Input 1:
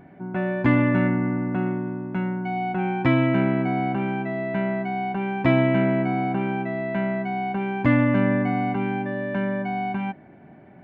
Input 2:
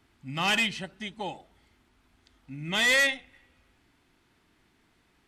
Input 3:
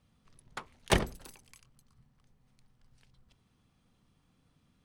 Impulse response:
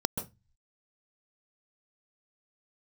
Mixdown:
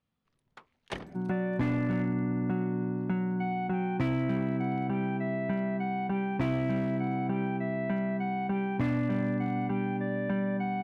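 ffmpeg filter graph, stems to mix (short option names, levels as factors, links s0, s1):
-filter_complex "[0:a]adelay=950,volume=0.631[s0];[2:a]lowpass=3000,aemphasis=mode=production:type=bsi,volume=0.299[s1];[s0][s1]amix=inputs=2:normalize=0,asoftclip=type=hard:threshold=0.112,acompressor=threshold=0.0316:ratio=6,volume=1,lowshelf=f=320:g=6"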